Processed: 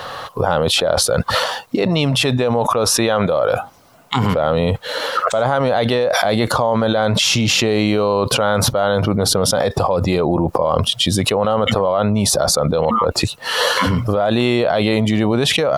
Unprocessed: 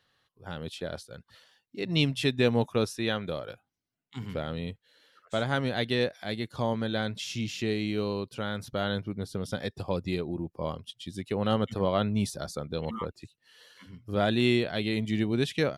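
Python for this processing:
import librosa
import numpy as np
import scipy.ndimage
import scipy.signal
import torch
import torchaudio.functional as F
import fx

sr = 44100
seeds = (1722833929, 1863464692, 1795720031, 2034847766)

y = fx.band_shelf(x, sr, hz=800.0, db=12.0, octaves=1.7)
y = fx.env_flatten(y, sr, amount_pct=100)
y = F.gain(torch.from_numpy(y), -3.5).numpy()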